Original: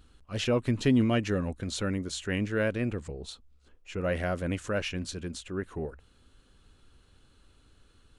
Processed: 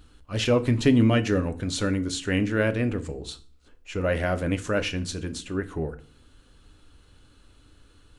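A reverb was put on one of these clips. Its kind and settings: FDN reverb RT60 0.41 s, low-frequency decay 1.45×, high-frequency decay 0.85×, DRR 9 dB; trim +4.5 dB

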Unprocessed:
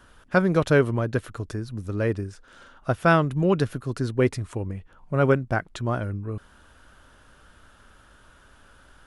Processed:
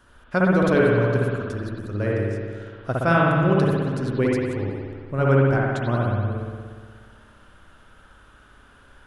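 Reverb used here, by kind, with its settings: spring tank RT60 1.8 s, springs 59 ms, chirp 35 ms, DRR -4 dB; trim -3 dB

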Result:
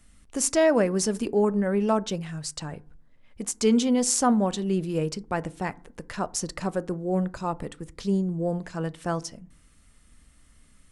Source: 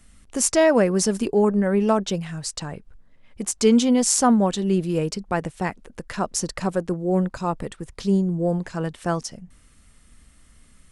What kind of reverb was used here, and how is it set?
FDN reverb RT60 0.45 s, low-frequency decay 1.5×, high-frequency decay 0.4×, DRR 16.5 dB; trim -4 dB

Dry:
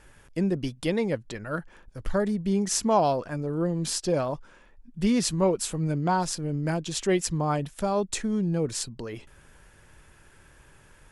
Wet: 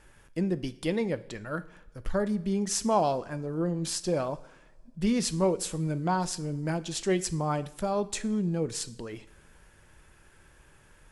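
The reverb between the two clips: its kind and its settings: two-slope reverb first 0.58 s, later 1.9 s, from -17 dB, DRR 12.5 dB; trim -3 dB

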